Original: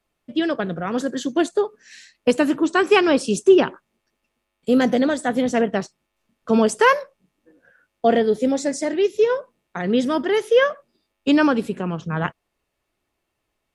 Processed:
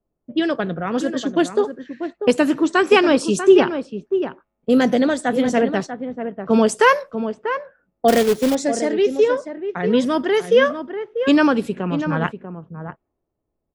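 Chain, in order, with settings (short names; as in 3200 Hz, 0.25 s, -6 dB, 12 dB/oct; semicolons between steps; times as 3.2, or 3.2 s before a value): outdoor echo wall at 110 m, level -9 dB; low-pass opened by the level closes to 540 Hz, open at -17.5 dBFS; 8.08–8.55 companded quantiser 4-bit; gain +1.5 dB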